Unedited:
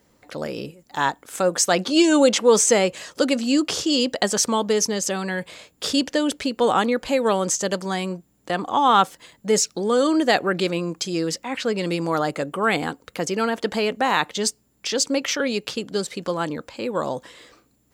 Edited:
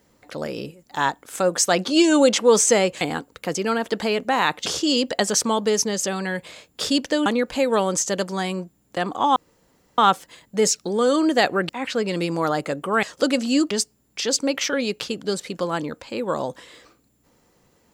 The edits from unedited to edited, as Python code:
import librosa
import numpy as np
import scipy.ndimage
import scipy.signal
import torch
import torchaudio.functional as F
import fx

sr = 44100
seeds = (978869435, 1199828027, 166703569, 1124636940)

y = fx.edit(x, sr, fx.swap(start_s=3.01, length_s=0.68, other_s=12.73, other_length_s=1.65),
    fx.cut(start_s=6.29, length_s=0.5),
    fx.insert_room_tone(at_s=8.89, length_s=0.62),
    fx.cut(start_s=10.6, length_s=0.79), tone=tone)